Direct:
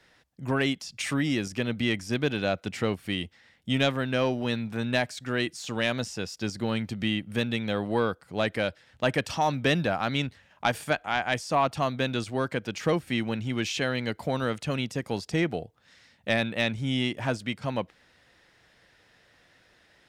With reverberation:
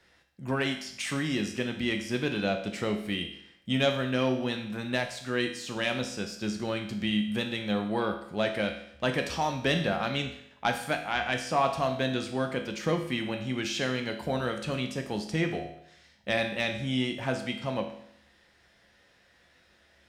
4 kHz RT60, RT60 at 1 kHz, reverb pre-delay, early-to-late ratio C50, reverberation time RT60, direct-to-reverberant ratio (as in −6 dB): 0.70 s, 0.70 s, 6 ms, 8.5 dB, 0.70 s, 4.0 dB